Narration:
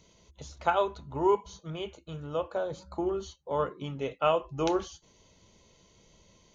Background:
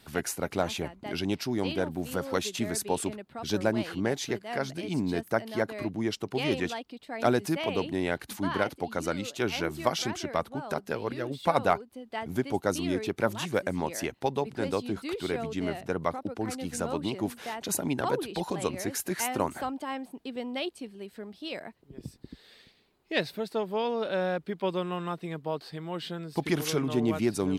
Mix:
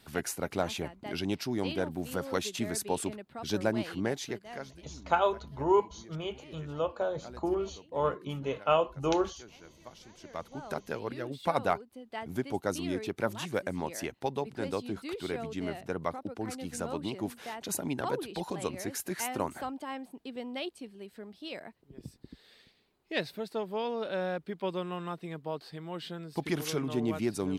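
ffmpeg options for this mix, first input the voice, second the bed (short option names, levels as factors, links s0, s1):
-filter_complex "[0:a]adelay=4450,volume=1[s0];[1:a]volume=6.68,afade=t=out:st=4.02:d=0.87:silence=0.0944061,afade=t=in:st=10.13:d=0.6:silence=0.112202[s1];[s0][s1]amix=inputs=2:normalize=0"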